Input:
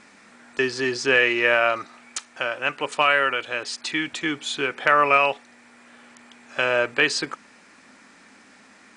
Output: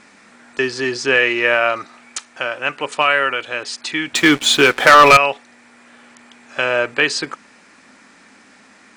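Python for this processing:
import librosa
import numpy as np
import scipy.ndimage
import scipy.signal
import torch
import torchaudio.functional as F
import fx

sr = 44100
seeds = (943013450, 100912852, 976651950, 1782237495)

y = fx.leveller(x, sr, passes=3, at=(4.15, 5.17))
y = y * 10.0 ** (3.5 / 20.0)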